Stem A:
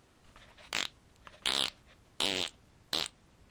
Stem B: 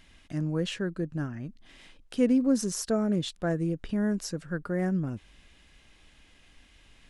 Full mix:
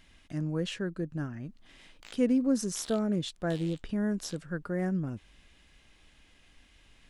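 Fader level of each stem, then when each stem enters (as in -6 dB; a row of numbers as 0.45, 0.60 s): -18.0, -2.5 dB; 1.30, 0.00 s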